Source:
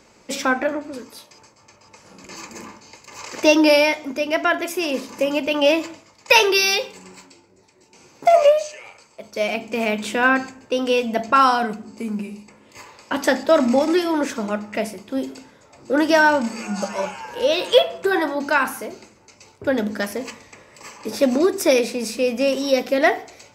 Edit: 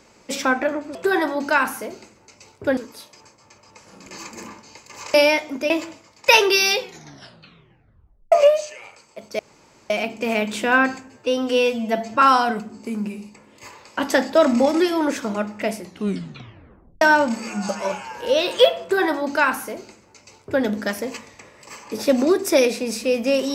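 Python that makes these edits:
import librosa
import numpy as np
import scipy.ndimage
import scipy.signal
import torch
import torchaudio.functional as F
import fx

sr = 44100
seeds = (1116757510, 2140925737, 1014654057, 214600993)

y = fx.edit(x, sr, fx.cut(start_s=3.32, length_s=0.37),
    fx.cut(start_s=4.25, length_s=1.47),
    fx.tape_stop(start_s=6.78, length_s=1.56),
    fx.insert_room_tone(at_s=9.41, length_s=0.51),
    fx.stretch_span(start_s=10.6, length_s=0.75, factor=1.5),
    fx.tape_stop(start_s=14.91, length_s=1.24),
    fx.duplicate(start_s=17.95, length_s=1.82, to_s=0.95), tone=tone)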